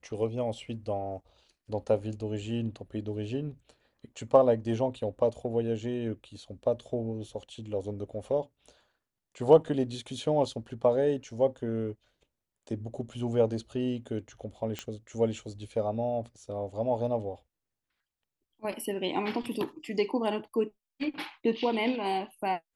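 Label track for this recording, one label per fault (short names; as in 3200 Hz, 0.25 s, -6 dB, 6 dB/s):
14.790000	14.790000	pop -19 dBFS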